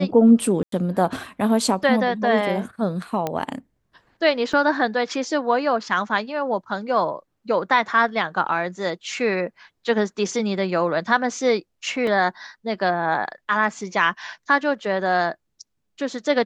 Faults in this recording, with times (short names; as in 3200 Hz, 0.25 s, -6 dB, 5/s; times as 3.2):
0.63–0.72 gap 93 ms
3.27 pop -11 dBFS
4.53 gap 4.2 ms
12.07 gap 2.5 ms